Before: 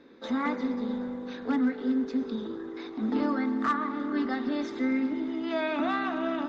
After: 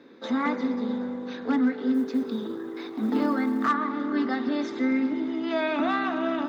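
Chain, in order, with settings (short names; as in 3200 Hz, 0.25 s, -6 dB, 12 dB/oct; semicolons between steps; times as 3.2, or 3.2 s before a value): HPF 110 Hz 12 dB/oct; 1.94–3.68 companded quantiser 8-bit; gain +3 dB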